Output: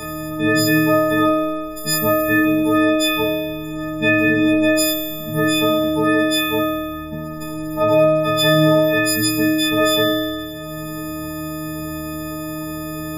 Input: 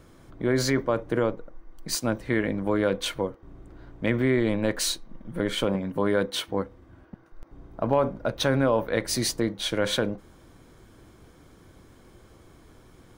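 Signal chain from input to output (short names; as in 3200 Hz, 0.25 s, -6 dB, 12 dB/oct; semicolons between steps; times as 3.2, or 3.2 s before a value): frequency quantiser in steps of 6 st; flutter echo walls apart 4.4 m, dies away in 1.1 s; three-band squash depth 70%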